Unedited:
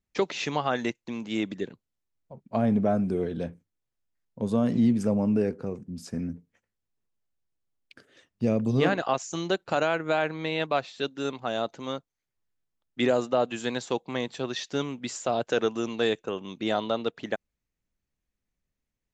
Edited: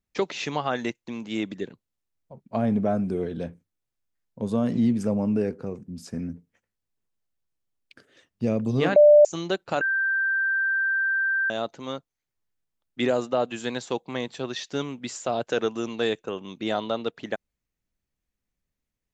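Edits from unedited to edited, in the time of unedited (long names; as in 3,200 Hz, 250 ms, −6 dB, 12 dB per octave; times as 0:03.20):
0:08.96–0:09.25: beep over 593 Hz −9.5 dBFS
0:09.81–0:11.50: beep over 1,570 Hz −21 dBFS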